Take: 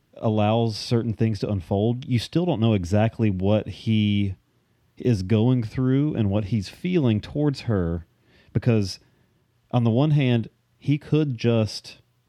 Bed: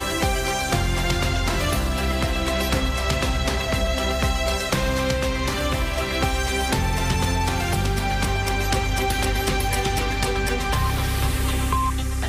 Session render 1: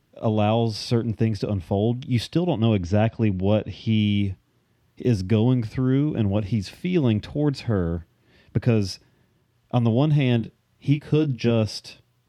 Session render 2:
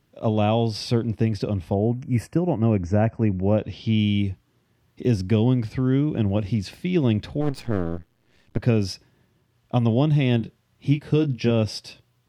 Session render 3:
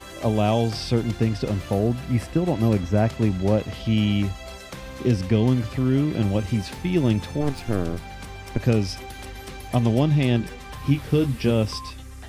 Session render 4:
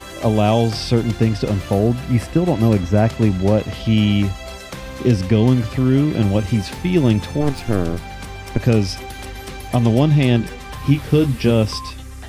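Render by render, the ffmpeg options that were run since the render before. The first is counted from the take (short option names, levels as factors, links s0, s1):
-filter_complex "[0:a]asettb=1/sr,asplit=3[s0][s1][s2];[s0]atrim=end=2.584[s3];[s1]atrim=start=2.58:end=3.99,asetpts=PTS-STARTPTS,afade=t=in:d=0.004:c=qsin,afade=t=out:st=1.406:d=0.004:c=qsin,lowpass=f=6000:w=0.5412,lowpass=f=6000:w=1.3066[s4];[s2]atrim=start=3.986[s5];[s3][s4]acrossfade=d=0.004:c1=hsin:c2=qsin[s6];[s6][s5]acrossfade=d=0.004:c1=qsin:c2=hsin,asettb=1/sr,asplit=3[s7][s8][s9];[s7]atrim=end=10.384[s10];[s8]atrim=start=10.38:end=11.51,asetpts=PTS-STARTPTS,afade=t=in:d=0.004:c=qsin,afade=t=out:st=1.126:d=0.004:c=qsin,asplit=2[s11][s12];[s12]adelay=22,volume=0.422[s13];[s11][s13]amix=inputs=2:normalize=0,atrim=end_sample=49833[s14];[s9]atrim=start=11.506[s15];[s10][s14]acrossfade=d=0.004:c1=hsin:c2=qsin[s16];[s16][s15]acrossfade=d=0.004:c1=qsin:c2=hsin"
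-filter_complex "[0:a]asettb=1/sr,asplit=3[s0][s1][s2];[s0]atrim=end=1.744[s3];[s1]atrim=start=1.74:end=3.58,asetpts=PTS-STARTPTS,afade=t=in:d=0.004:c=qsin,afade=t=out:st=1.836:d=0.004:c=qsin,asuperstop=centerf=3700:order=4:qfactor=0.96[s4];[s2]atrim=start=3.576[s5];[s3][s4]acrossfade=d=0.004:c1=hsin:c2=qsin[s6];[s6][s5]acrossfade=d=0.004:c1=qsin:c2=hsin,asplit=3[s7][s8][s9];[s7]afade=t=out:st=7.4:d=0.02[s10];[s8]aeval=exprs='max(val(0),0)':c=same,afade=t=in:st=7.4:d=0.02,afade=t=out:st=8.58:d=0.02[s11];[s9]afade=t=in:st=8.58:d=0.02[s12];[s10][s11][s12]amix=inputs=3:normalize=0"
-filter_complex "[1:a]volume=0.178[s0];[0:a][s0]amix=inputs=2:normalize=0"
-af "volume=1.88,alimiter=limit=0.708:level=0:latency=1"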